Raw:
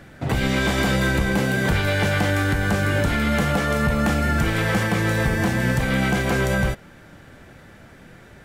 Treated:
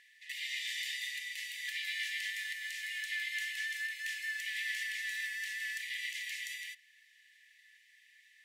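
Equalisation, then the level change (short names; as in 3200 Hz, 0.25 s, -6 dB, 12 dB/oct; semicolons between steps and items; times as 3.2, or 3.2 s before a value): brick-wall FIR high-pass 1700 Hz; high shelf 4600 Hz -7 dB; notch 2300 Hz, Q 16; -6.0 dB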